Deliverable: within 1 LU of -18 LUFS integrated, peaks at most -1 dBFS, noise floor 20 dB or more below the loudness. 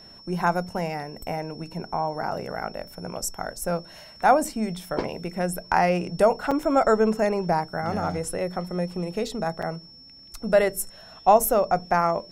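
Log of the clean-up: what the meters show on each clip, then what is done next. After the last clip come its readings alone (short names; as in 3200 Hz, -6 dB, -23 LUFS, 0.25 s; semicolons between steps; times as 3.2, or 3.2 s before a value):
dropouts 2; longest dropout 5.1 ms; steady tone 5400 Hz; tone level -46 dBFS; loudness -25.0 LUFS; peak -5.5 dBFS; loudness target -18.0 LUFS
-> interpolate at 6.51/9.62, 5.1 ms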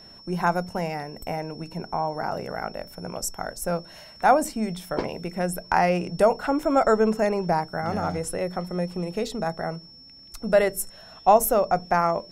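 dropouts 0; steady tone 5400 Hz; tone level -46 dBFS
-> notch 5400 Hz, Q 30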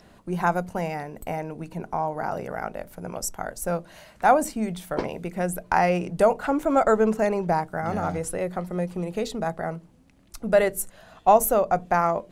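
steady tone none; loudness -25.0 LUFS; peak -5.5 dBFS; loudness target -18.0 LUFS
-> gain +7 dB; limiter -1 dBFS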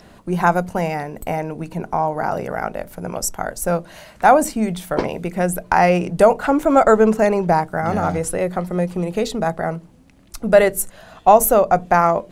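loudness -18.5 LUFS; peak -1.0 dBFS; noise floor -48 dBFS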